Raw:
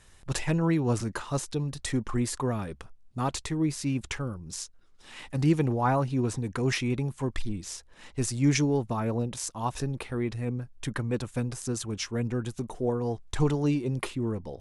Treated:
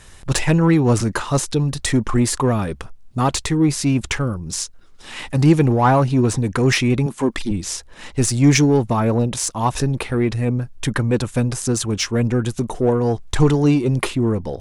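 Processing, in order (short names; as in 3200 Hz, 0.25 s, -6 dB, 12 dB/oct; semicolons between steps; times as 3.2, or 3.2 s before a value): 7.06–7.51 resonant low shelf 160 Hz -11.5 dB, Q 1.5; in parallel at -4.5 dB: soft clip -28.5 dBFS, distortion -8 dB; on the sum: gain +8.5 dB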